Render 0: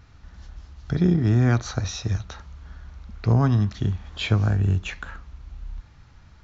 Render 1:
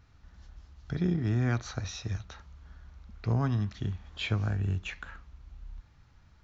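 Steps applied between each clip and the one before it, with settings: dynamic EQ 2300 Hz, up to +4 dB, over -47 dBFS, Q 1; gain -9 dB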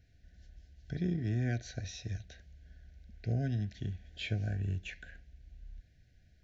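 Chebyshev band-stop 740–1500 Hz, order 5; gain -4.5 dB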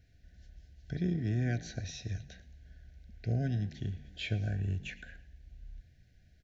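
frequency-shifting echo 0.112 s, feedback 38%, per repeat +46 Hz, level -19 dB; gain +1 dB

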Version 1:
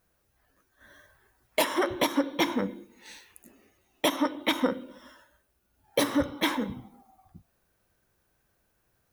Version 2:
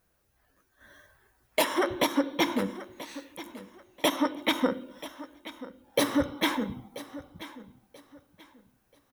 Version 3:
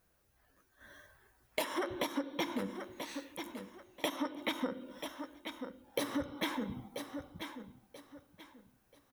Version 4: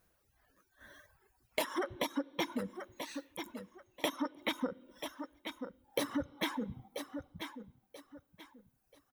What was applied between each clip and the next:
feedback echo 0.984 s, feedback 27%, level -16 dB
compressor 3:1, threshold -33 dBFS, peak gain reduction 10.5 dB; gain -1.5 dB
reverb removal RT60 1.4 s; gain +1 dB

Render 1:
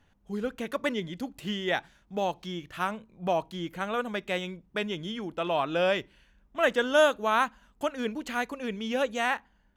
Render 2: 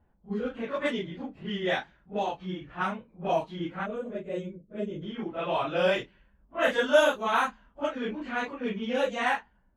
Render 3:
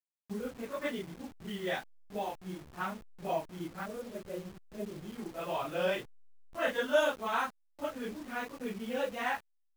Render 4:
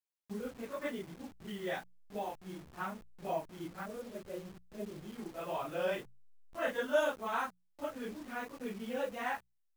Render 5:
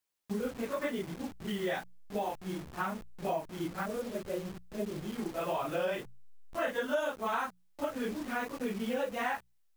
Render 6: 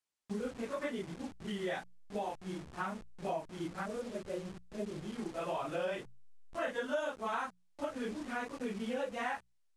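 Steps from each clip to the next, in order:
phase scrambler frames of 0.1 s; low-pass opened by the level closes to 980 Hz, open at -21 dBFS; spectral gain 3.86–5.02, 650–6200 Hz -15 dB
level-crossing sampler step -39.5 dBFS; gain -6.5 dB
notches 60/120/180 Hz; dynamic EQ 3500 Hz, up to -4 dB, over -48 dBFS, Q 0.89; gain -2.5 dB
compressor 4:1, threshold -38 dBFS, peak gain reduction 12 dB; gain +8 dB
LPF 10000 Hz 24 dB/oct; gain -3.5 dB

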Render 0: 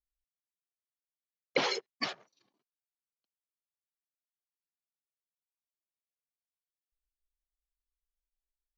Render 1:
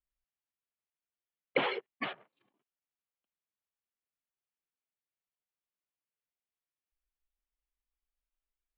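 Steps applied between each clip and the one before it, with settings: steep low-pass 3300 Hz 48 dB/oct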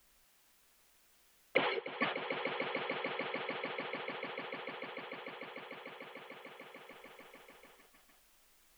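on a send: swelling echo 0.148 s, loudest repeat 5, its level -15.5 dB; on the sum: three-band squash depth 70%; gain +6 dB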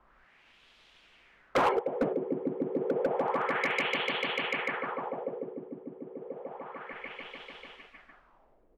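LFO low-pass sine 0.3 Hz 310–3400 Hz; hard clip -29.5 dBFS, distortion -12 dB; downsampling 32000 Hz; gain +8.5 dB

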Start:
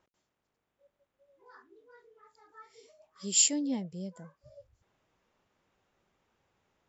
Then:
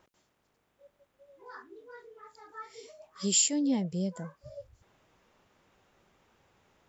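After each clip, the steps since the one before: compressor 3:1, threshold -34 dBFS, peak gain reduction 11.5 dB; gain +8.5 dB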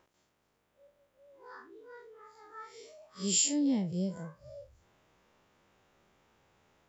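time blur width 83 ms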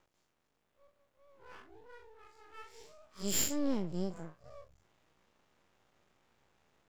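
half-wave rectifier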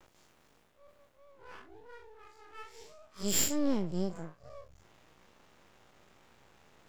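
reverse; upward compressor, threshold -54 dBFS; reverse; vibrato 0.36 Hz 21 cents; gain +3 dB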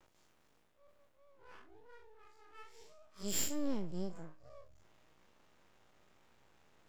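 resonator 310 Hz, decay 0.72 s, mix 50%; gain -1.5 dB

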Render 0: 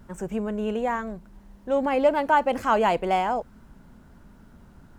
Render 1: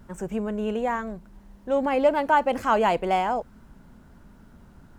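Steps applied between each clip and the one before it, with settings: nothing audible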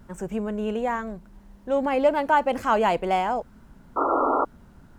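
painted sound noise, 3.96–4.45, 250–1400 Hz -22 dBFS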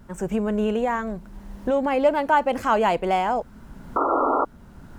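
recorder AGC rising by 14 dB/s; gain +1 dB

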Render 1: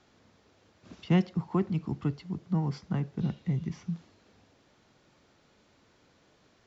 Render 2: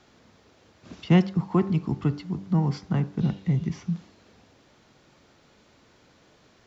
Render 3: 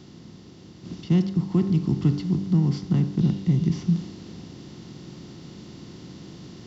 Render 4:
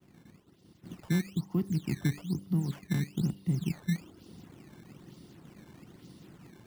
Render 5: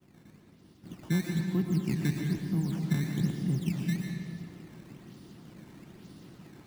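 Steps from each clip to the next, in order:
de-hum 97.28 Hz, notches 18; gain +6 dB
per-bin compression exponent 0.6; band shelf 1100 Hz -11.5 dB 2.9 oct; vocal rider 0.5 s
expander -41 dBFS; decimation with a swept rate 13×, swing 160% 1.1 Hz; reverb removal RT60 0.69 s; gain -8 dB
digital reverb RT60 1.9 s, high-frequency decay 0.75×, pre-delay 75 ms, DRR 1.5 dB

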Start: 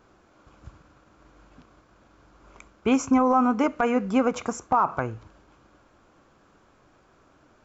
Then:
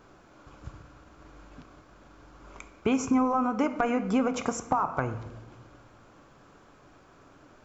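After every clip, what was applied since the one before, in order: compressor 6:1, threshold -26 dBFS, peak gain reduction 10 dB; on a send at -10.5 dB: reverb RT60 1.3 s, pre-delay 7 ms; on the sum: gain +3 dB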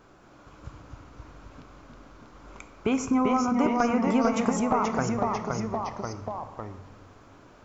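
echoes that change speed 0.221 s, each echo -1 st, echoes 3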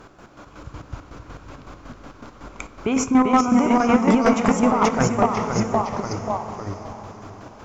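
chopper 5.4 Hz, depth 60%, duty 40%; sine folder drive 7 dB, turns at -9 dBFS; diffused feedback echo 0.594 s, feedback 40%, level -11.5 dB

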